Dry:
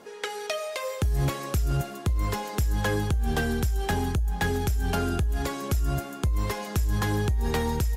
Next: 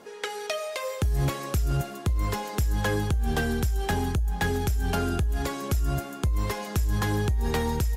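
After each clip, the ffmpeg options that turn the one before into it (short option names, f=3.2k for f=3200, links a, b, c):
-af anull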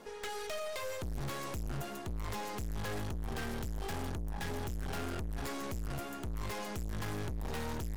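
-af "aeval=exprs='(tanh(70.8*val(0)+0.7)-tanh(0.7))/70.8':c=same"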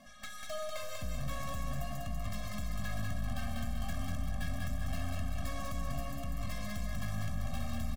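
-af "aecho=1:1:194|388|582|776|970|1164:0.708|0.333|0.156|0.0735|0.0345|0.0162,afftfilt=real='re*eq(mod(floor(b*sr/1024/260),2),0)':imag='im*eq(mod(floor(b*sr/1024/260),2),0)':win_size=1024:overlap=0.75"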